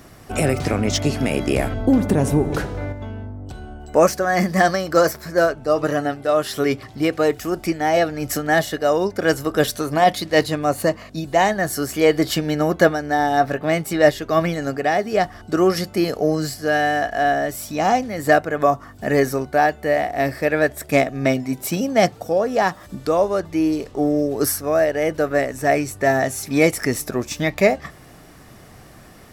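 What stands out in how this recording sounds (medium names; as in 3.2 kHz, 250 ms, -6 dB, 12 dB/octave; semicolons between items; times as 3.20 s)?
noise floor -44 dBFS; spectral tilt -5.0 dB/octave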